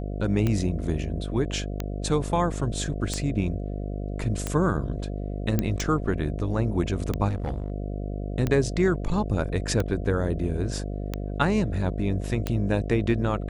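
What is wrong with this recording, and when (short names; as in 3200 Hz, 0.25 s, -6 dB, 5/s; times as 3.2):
buzz 50 Hz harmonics 14 -31 dBFS
tick 45 rpm -13 dBFS
5.59 pop -10 dBFS
7.28–7.7 clipped -24.5 dBFS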